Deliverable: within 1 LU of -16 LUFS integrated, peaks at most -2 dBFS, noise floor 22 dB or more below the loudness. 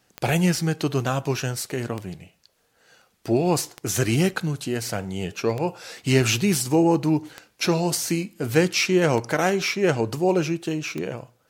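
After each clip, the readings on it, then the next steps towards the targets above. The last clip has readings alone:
clicks 7; loudness -23.5 LUFS; peak -5.0 dBFS; loudness target -16.0 LUFS
-> de-click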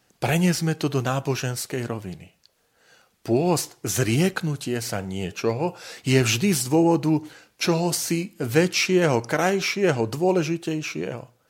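clicks 0; loudness -23.5 LUFS; peak -5.0 dBFS; loudness target -16.0 LUFS
-> gain +7.5 dB; limiter -2 dBFS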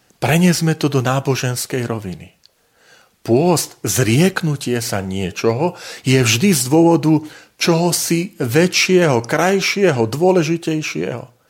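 loudness -16.5 LUFS; peak -2.0 dBFS; noise floor -59 dBFS

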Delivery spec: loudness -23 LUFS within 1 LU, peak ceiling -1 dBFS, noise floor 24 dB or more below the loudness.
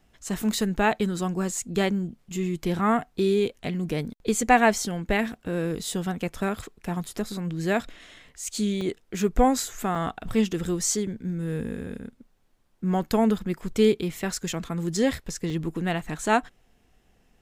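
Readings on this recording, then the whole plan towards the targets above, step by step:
dropouts 3; longest dropout 3.8 ms; loudness -26.5 LUFS; peak -5.0 dBFS; loudness target -23.0 LUFS
-> interpolate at 8.81/9.95/15.5, 3.8 ms; gain +3.5 dB

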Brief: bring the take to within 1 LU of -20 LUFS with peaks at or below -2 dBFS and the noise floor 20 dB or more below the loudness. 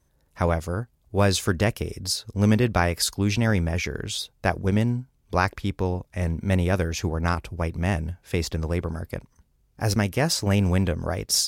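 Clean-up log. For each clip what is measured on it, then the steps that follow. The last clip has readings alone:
loudness -25.0 LUFS; peak -6.0 dBFS; loudness target -20.0 LUFS
-> gain +5 dB; limiter -2 dBFS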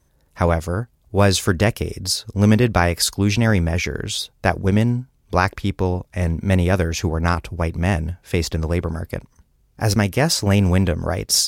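loudness -20.0 LUFS; peak -2.0 dBFS; noise floor -61 dBFS

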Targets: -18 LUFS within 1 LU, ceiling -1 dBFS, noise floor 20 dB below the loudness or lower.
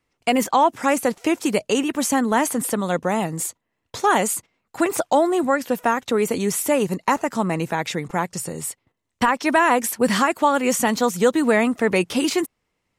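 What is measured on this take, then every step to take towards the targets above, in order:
loudness -21.0 LUFS; peak -6.0 dBFS; loudness target -18.0 LUFS
-> gain +3 dB

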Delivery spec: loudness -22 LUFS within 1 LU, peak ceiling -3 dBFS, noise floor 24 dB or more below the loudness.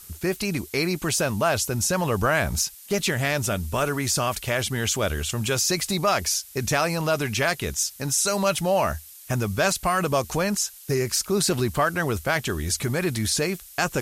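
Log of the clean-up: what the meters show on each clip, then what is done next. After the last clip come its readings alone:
noise floor -46 dBFS; noise floor target -48 dBFS; loudness -24.0 LUFS; peak -9.0 dBFS; loudness target -22.0 LUFS
-> noise print and reduce 6 dB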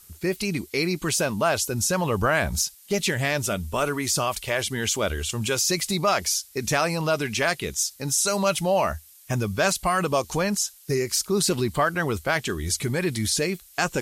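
noise floor -51 dBFS; loudness -24.5 LUFS; peak -9.5 dBFS; loudness target -22.0 LUFS
-> gain +2.5 dB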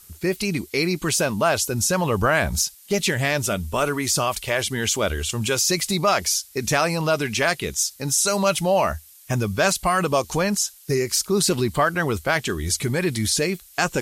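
loudness -22.0 LUFS; peak -7.0 dBFS; noise floor -49 dBFS

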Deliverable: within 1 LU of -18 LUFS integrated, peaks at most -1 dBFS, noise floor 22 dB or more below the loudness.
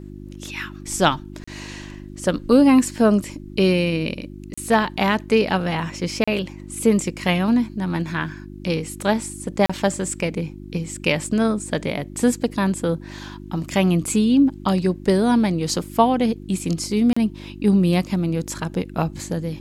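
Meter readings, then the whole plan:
dropouts 5; longest dropout 35 ms; hum 50 Hz; harmonics up to 350 Hz; hum level -36 dBFS; loudness -21.0 LUFS; peak -2.5 dBFS; loudness target -18.0 LUFS
-> interpolate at 1.44/4.54/6.24/9.66/17.13, 35 ms; de-hum 50 Hz, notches 7; gain +3 dB; limiter -1 dBFS

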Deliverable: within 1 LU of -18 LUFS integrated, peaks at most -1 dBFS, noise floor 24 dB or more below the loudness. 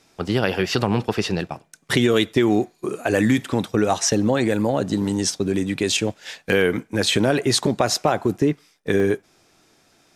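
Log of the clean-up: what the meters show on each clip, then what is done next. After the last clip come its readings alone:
dropouts 1; longest dropout 1.9 ms; loudness -21.0 LUFS; peak -3.0 dBFS; loudness target -18.0 LUFS
-> interpolate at 9, 1.9 ms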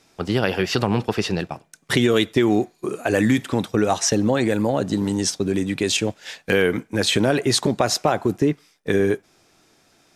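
dropouts 0; loudness -21.0 LUFS; peak -3.0 dBFS; loudness target -18.0 LUFS
-> gain +3 dB; limiter -1 dBFS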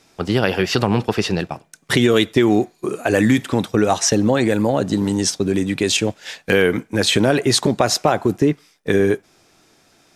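loudness -18.0 LUFS; peak -1.0 dBFS; noise floor -57 dBFS

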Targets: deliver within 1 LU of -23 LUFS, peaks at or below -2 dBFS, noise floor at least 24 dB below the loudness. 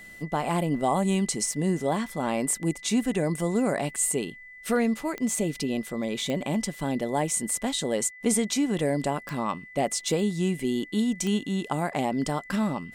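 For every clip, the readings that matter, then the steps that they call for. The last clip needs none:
clicks 4; steady tone 2000 Hz; tone level -44 dBFS; loudness -27.0 LUFS; peak -12.5 dBFS; loudness target -23.0 LUFS
-> de-click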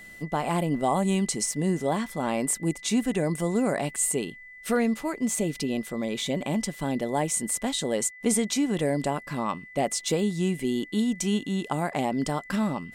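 clicks 0; steady tone 2000 Hz; tone level -44 dBFS
-> notch 2000 Hz, Q 30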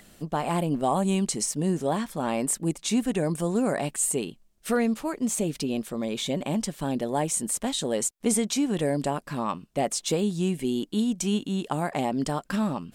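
steady tone none; loudness -27.0 LUFS; peak -12.5 dBFS; loudness target -23.0 LUFS
-> gain +4 dB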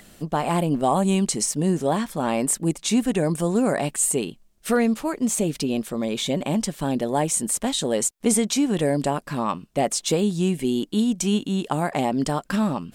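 loudness -23.0 LUFS; peak -8.5 dBFS; noise floor -55 dBFS

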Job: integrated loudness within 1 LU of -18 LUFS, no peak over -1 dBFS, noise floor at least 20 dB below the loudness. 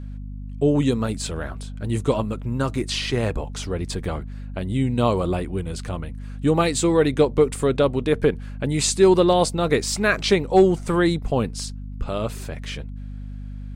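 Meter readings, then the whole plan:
hum 50 Hz; harmonics up to 250 Hz; hum level -31 dBFS; loudness -22.0 LUFS; peak -5.5 dBFS; loudness target -18.0 LUFS
-> notches 50/100/150/200/250 Hz; gain +4 dB

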